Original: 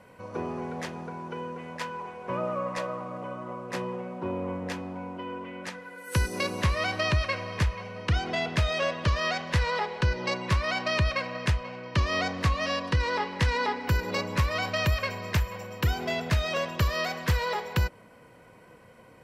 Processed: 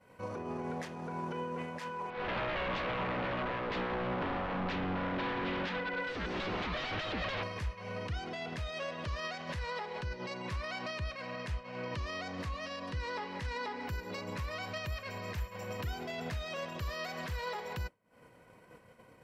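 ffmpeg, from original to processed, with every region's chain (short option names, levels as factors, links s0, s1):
-filter_complex "[0:a]asettb=1/sr,asplit=3[s0][s1][s2];[s0]atrim=end=2.104[s3];[s1]atrim=start=2.1:end=7.43,asetpts=PTS-STARTPTS,afade=t=in:d=0.004:c=qsin,afade=t=out:st=5.326:d=0.004:c=qsin,acompressor=threshold=0.0158:ratio=4:attack=3.2:release=140:knee=1:detection=peak,aeval=exprs='0.0106*(abs(mod(val(0)/0.0106+3,4)-2)-1)':c=same,lowpass=f=3900:w=0.5412,lowpass=f=3900:w=1.3066[s4];[s2]atrim=start=7.426[s5];[s3][s4]acrossfade=d=0.004:c1=hsin:c2=qsin[s6];[s6][s5]acrossfade=d=0.004:c1=qsin:c2=hsin,acompressor=threshold=0.0112:ratio=10,alimiter=level_in=5.62:limit=0.0631:level=0:latency=1:release=31,volume=0.178,agate=range=0.0224:threshold=0.01:ratio=3:detection=peak,volume=5.31"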